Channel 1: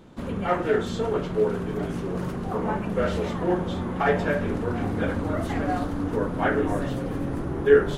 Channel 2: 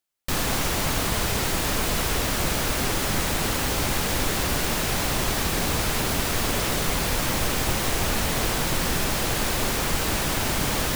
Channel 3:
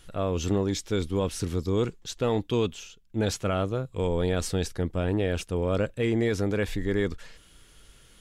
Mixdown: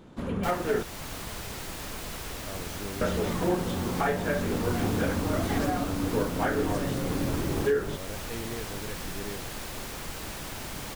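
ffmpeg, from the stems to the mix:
ffmpeg -i stem1.wav -i stem2.wav -i stem3.wav -filter_complex "[0:a]volume=-1dB,asplit=3[link_01][link_02][link_03];[link_01]atrim=end=0.83,asetpts=PTS-STARTPTS,afade=type=out:start_time=0.826:duration=0.004:curve=hsin[link_04];[link_02]atrim=start=0.83:end=3.01,asetpts=PTS-STARTPTS,volume=0[link_05];[link_03]atrim=start=3.01,asetpts=PTS-STARTPTS,afade=type=in:duration=0.004:curve=hsin[link_06];[link_04][link_05][link_06]concat=n=3:v=0:a=1[link_07];[1:a]adelay=150,volume=-13dB[link_08];[2:a]adelay=2300,volume=-13.5dB[link_09];[link_07][link_08][link_09]amix=inputs=3:normalize=0,alimiter=limit=-16dB:level=0:latency=1:release=435" out.wav

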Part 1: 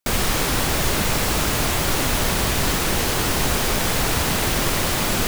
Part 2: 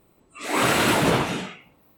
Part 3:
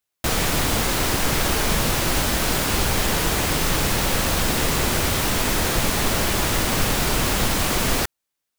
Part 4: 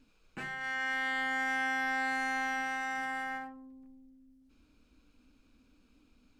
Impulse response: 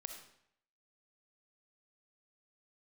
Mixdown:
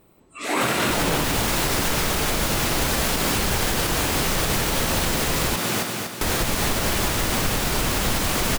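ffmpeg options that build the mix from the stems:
-filter_complex "[0:a]highpass=frequency=120:width=0.5412,highpass=frequency=120:width=1.3066,acontrast=66,flanger=delay=16.5:depth=4.4:speed=1.4,adelay=550,volume=-5.5dB,asplit=2[link_01][link_02];[link_02]volume=-5dB[link_03];[1:a]volume=1dB,asplit=2[link_04][link_05];[link_05]volume=-6dB[link_06];[2:a]adelay=650,volume=2.5dB,asplit=3[link_07][link_08][link_09];[link_07]atrim=end=5.56,asetpts=PTS-STARTPTS,afade=type=out:start_time=5.556:duration=0.004:curve=hsin[link_10];[link_08]atrim=start=5.56:end=6.21,asetpts=PTS-STARTPTS,volume=0[link_11];[link_09]atrim=start=6.21,asetpts=PTS-STARTPTS,afade=type=in:duration=0.004:curve=hsin[link_12];[link_10][link_11][link_12]concat=n=3:v=0:a=1[link_13];[4:a]atrim=start_sample=2205[link_14];[link_06][link_14]afir=irnorm=-1:irlink=0[link_15];[link_03]aecho=0:1:241|482|723|964|1205|1446|1687:1|0.5|0.25|0.125|0.0625|0.0312|0.0156[link_16];[link_01][link_04][link_13][link_15][link_16]amix=inputs=5:normalize=0,alimiter=limit=-12dB:level=0:latency=1:release=168"

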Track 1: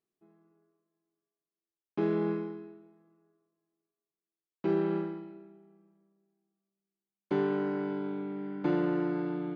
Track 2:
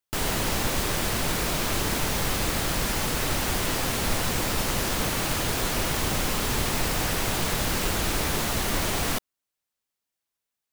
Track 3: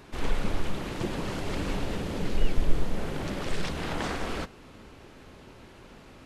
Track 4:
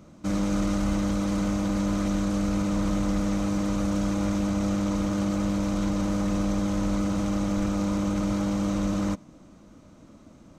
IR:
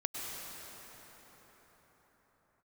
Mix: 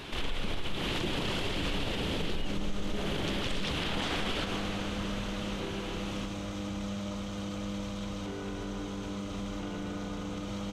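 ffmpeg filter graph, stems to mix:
-filter_complex "[0:a]aecho=1:1:4.2:0.65,adelay=950,volume=-1.5dB[link_01];[2:a]acompressor=threshold=-31dB:ratio=6,volume=2.5dB,asplit=2[link_02][link_03];[link_03]volume=-6dB[link_04];[3:a]adelay=2200,volume=-11dB,asplit=2[link_05][link_06];[link_06]volume=-7dB[link_07];[link_01][link_05]amix=inputs=2:normalize=0,alimiter=level_in=9.5dB:limit=-24dB:level=0:latency=1,volume=-9.5dB,volume=0dB[link_08];[4:a]atrim=start_sample=2205[link_09];[link_04][link_07]amix=inputs=2:normalize=0[link_10];[link_10][link_09]afir=irnorm=-1:irlink=0[link_11];[link_02][link_08][link_11]amix=inputs=3:normalize=0,equalizer=frequency=3200:width=1.7:gain=11.5,alimiter=limit=-23dB:level=0:latency=1:release=53"

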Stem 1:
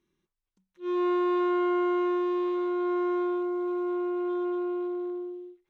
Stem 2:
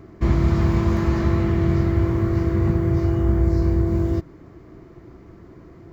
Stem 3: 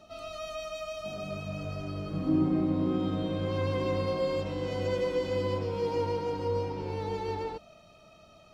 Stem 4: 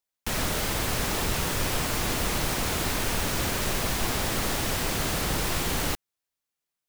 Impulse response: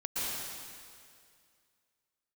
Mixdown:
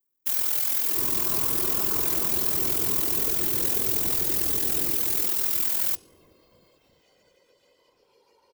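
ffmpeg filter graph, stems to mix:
-filter_complex "[0:a]lowpass=1500,volume=-5.5dB[link_01];[1:a]afwtdn=0.0398,alimiter=limit=-14.5dB:level=0:latency=1,crystalizer=i=1.5:c=0,adelay=750,volume=-2dB,asplit=2[link_02][link_03];[link_03]volume=-4dB[link_04];[2:a]lowshelf=frequency=370:gain=-9,acompressor=threshold=-36dB:ratio=6,adelay=2350,volume=-17dB[link_05];[3:a]bandreject=frequency=361.1:width_type=h:width=4,bandreject=frequency=722.2:width_type=h:width=4,bandreject=frequency=1083.3:width_type=h:width=4,bandreject=frequency=1444.4:width_type=h:width=4,bandreject=frequency=1805.5:width_type=h:width=4,bandreject=frequency=2166.6:width_type=h:width=4,bandreject=frequency=2527.7:width_type=h:width=4,bandreject=frequency=2888.8:width_type=h:width=4,bandreject=frequency=3249.9:width_type=h:width=4,bandreject=frequency=3611:width_type=h:width=4,bandreject=frequency=3972.1:width_type=h:width=4,bandreject=frequency=4333.2:width_type=h:width=4,bandreject=frequency=4694.3:width_type=h:width=4,bandreject=frequency=5055.4:width_type=h:width=4,bandreject=frequency=5416.5:width_type=h:width=4,bandreject=frequency=5777.6:width_type=h:width=4,bandreject=frequency=6138.7:width_type=h:width=4,bandreject=frequency=6499.8:width_type=h:width=4,bandreject=frequency=6860.9:width_type=h:width=4,bandreject=frequency=7222:width_type=h:width=4,bandreject=frequency=7583.1:width_type=h:width=4,bandreject=frequency=7944.2:width_type=h:width=4,bandreject=frequency=8305.3:width_type=h:width=4,bandreject=frequency=8666.4:width_type=h:width=4,bandreject=frequency=9027.5:width_type=h:width=4,bandreject=frequency=9388.6:width_type=h:width=4,bandreject=frequency=9749.7:width_type=h:width=4,bandreject=frequency=10110.8:width_type=h:width=4,bandreject=frequency=10471.9:width_type=h:width=4,bandreject=frequency=10833:width_type=h:width=4,bandreject=frequency=11194.1:width_type=h:width=4,bandreject=frequency=11555.2:width_type=h:width=4,aeval=exprs='val(0)*sin(2*PI*21*n/s)':channel_layout=same,volume=-3dB[link_06];[link_04]aecho=0:1:345|690|1035|1380|1725|2070|2415|2760:1|0.52|0.27|0.141|0.0731|0.038|0.0198|0.0103[link_07];[link_01][link_02][link_05][link_06][link_07]amix=inputs=5:normalize=0,aemphasis=mode=production:type=riaa,afftfilt=real='hypot(re,im)*cos(2*PI*random(0))':imag='hypot(re,im)*sin(2*PI*random(1))':win_size=512:overlap=0.75"

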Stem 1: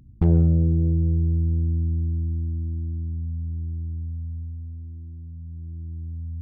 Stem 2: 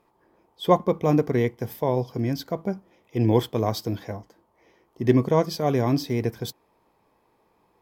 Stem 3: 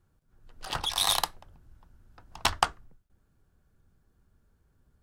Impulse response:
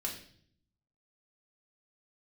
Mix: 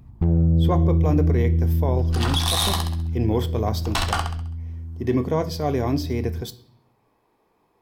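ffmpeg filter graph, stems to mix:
-filter_complex "[0:a]volume=-2.5dB,asplit=2[link_01][link_02];[link_02]volume=-17dB[link_03];[1:a]volume=-9dB,asplit=2[link_04][link_05];[link_05]volume=-9.5dB[link_06];[2:a]volume=8dB,asoftclip=hard,volume=-8dB,adelay=1500,volume=-3.5dB,asplit=3[link_07][link_08][link_09];[link_08]volume=-4dB[link_10];[link_09]volume=-6dB[link_11];[3:a]atrim=start_sample=2205[link_12];[link_06][link_10]amix=inputs=2:normalize=0[link_13];[link_13][link_12]afir=irnorm=-1:irlink=0[link_14];[link_03][link_11]amix=inputs=2:normalize=0,aecho=0:1:66|132|198|264|330|396:1|0.43|0.185|0.0795|0.0342|0.0147[link_15];[link_01][link_04][link_07][link_14][link_15]amix=inputs=5:normalize=0,acontrast=54,alimiter=limit=-11.5dB:level=0:latency=1:release=15"

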